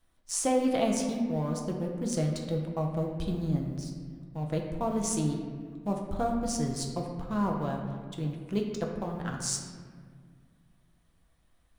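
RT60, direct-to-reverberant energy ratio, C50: 1.8 s, 0.5 dB, 4.0 dB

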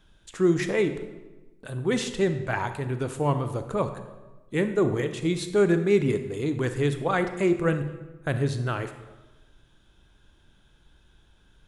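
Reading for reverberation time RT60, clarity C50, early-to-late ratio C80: 1.2 s, 10.0 dB, 12.0 dB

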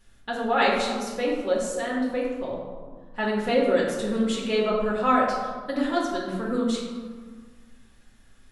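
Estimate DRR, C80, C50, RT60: -4.5 dB, 3.5 dB, 1.5 dB, 1.7 s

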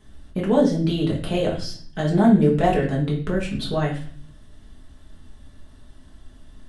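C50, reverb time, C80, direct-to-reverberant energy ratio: 7.5 dB, 0.45 s, 12.0 dB, -4.0 dB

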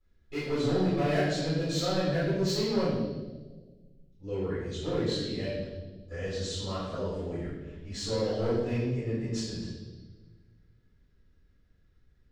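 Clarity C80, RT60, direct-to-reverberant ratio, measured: 2.5 dB, 1.4 s, -15.0 dB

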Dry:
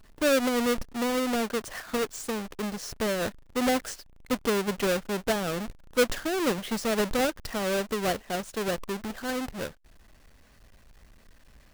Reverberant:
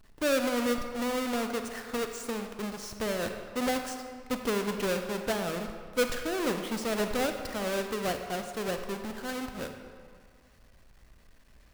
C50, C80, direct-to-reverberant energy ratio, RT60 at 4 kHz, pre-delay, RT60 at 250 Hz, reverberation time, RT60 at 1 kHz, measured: 6.0 dB, 7.5 dB, 5.5 dB, 1.2 s, 34 ms, 1.8 s, 2.0 s, 2.0 s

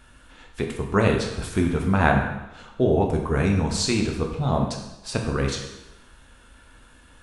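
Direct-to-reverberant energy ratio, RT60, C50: 1.5 dB, 0.95 s, 5.0 dB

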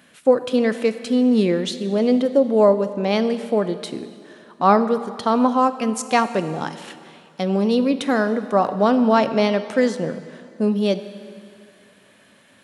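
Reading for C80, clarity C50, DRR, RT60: 13.0 dB, 12.0 dB, 11.0 dB, 2.3 s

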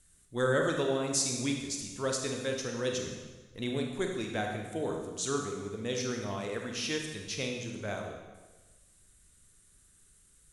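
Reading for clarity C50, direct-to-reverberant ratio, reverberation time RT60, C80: 3.5 dB, 1.5 dB, 1.3 s, 5.5 dB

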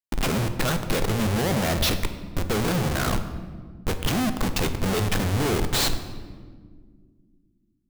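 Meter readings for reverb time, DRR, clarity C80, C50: 1.8 s, 8.0 dB, 11.5 dB, 10.0 dB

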